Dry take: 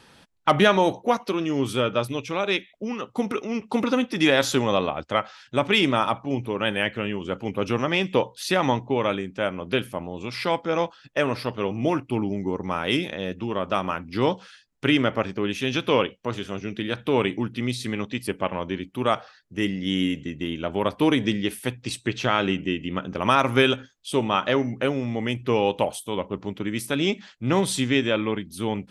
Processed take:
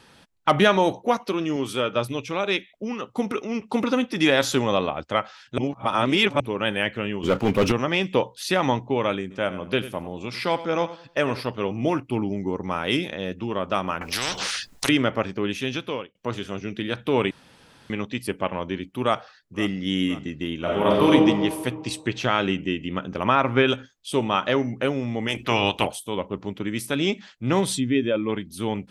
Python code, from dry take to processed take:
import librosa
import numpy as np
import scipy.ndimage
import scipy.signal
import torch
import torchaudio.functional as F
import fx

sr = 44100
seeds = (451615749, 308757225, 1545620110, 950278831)

y = fx.low_shelf(x, sr, hz=180.0, db=-10.0, at=(1.56, 1.96))
y = fx.leveller(y, sr, passes=3, at=(7.23, 7.72))
y = fx.echo_feedback(y, sr, ms=96, feedback_pct=28, wet_db=-15.0, at=(9.3, 11.4), fade=0.02)
y = fx.spectral_comp(y, sr, ratio=10.0, at=(14.01, 14.89))
y = fx.echo_throw(y, sr, start_s=19.02, length_s=0.75, ms=520, feedback_pct=60, wet_db=-17.0)
y = fx.reverb_throw(y, sr, start_s=20.6, length_s=0.48, rt60_s=1.7, drr_db=-4.5)
y = fx.lowpass(y, sr, hz=2800.0, slope=12, at=(23.23, 23.67), fade=0.02)
y = fx.spec_clip(y, sr, under_db=19, at=(25.27, 25.86), fade=0.02)
y = fx.spec_expand(y, sr, power=1.5, at=(27.74, 28.28), fade=0.02)
y = fx.edit(y, sr, fx.reverse_span(start_s=5.58, length_s=0.82),
    fx.fade_out_span(start_s=15.55, length_s=0.6),
    fx.room_tone_fill(start_s=17.31, length_s=0.59), tone=tone)